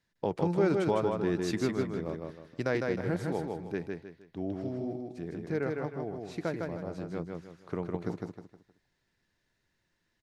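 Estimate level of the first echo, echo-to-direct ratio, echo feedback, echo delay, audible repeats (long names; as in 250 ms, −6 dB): −3.5 dB, −3.0 dB, 34%, 156 ms, 4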